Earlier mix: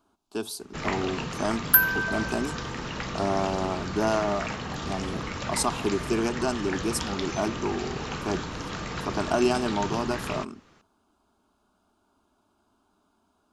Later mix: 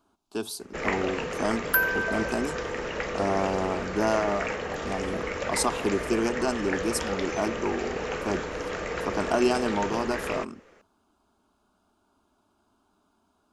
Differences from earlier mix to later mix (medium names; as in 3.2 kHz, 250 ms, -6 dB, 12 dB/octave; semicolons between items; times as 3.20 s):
first sound: add graphic EQ 125/250/500/1000/2000/4000 Hz -9/-4/+12/-4/+6/-7 dB; second sound: add treble shelf 5.3 kHz -11 dB